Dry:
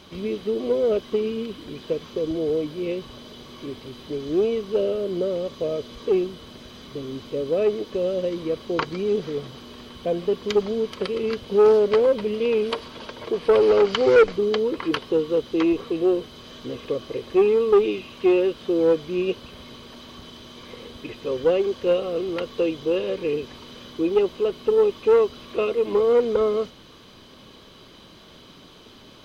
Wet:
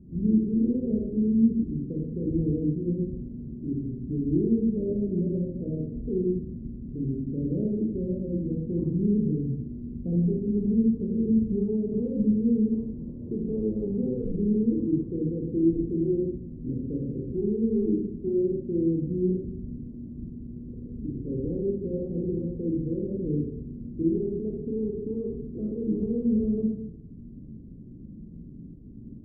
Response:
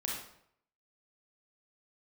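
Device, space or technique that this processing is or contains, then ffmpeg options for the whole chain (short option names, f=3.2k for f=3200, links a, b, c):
club heard from the street: -filter_complex "[0:a]alimiter=limit=-16.5dB:level=0:latency=1:release=36,lowpass=f=250:w=0.5412,lowpass=f=250:w=1.3066[a];[1:a]atrim=start_sample=2205[b];[a][b]afir=irnorm=-1:irlink=0,volume=7.5dB"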